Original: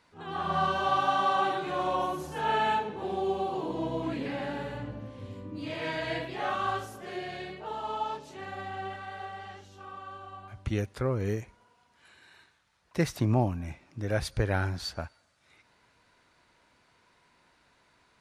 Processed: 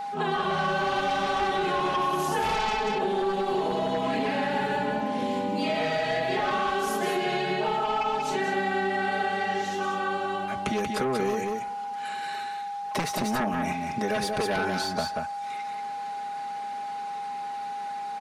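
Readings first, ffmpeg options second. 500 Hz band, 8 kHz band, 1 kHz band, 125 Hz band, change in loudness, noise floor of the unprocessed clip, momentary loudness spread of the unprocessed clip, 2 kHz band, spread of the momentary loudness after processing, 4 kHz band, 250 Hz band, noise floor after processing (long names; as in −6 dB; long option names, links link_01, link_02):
+6.0 dB, +9.0 dB, +5.5 dB, −4.5 dB, +3.5 dB, −67 dBFS, 16 LU, +7.5 dB, 8 LU, +7.0 dB, +4.5 dB, −34 dBFS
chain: -filter_complex "[0:a]highpass=150,aecho=1:1:4.7:1,aeval=exprs='0.266*sin(PI/2*3.55*val(0)/0.266)':channel_layout=same,acompressor=threshold=-23dB:ratio=6,aecho=1:1:185:0.501,acrossover=split=280|1400[link_01][link_02][link_03];[link_01]acompressor=threshold=-35dB:ratio=4[link_04];[link_02]acompressor=threshold=-27dB:ratio=4[link_05];[link_03]acompressor=threshold=-33dB:ratio=4[link_06];[link_04][link_05][link_06]amix=inputs=3:normalize=0,aeval=exprs='val(0)+0.0282*sin(2*PI*810*n/s)':channel_layout=same"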